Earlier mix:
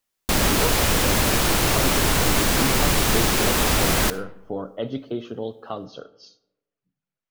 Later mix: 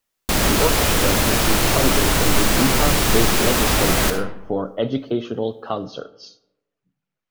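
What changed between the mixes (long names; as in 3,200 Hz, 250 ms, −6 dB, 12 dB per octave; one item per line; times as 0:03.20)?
speech +6.5 dB
background: send +11.5 dB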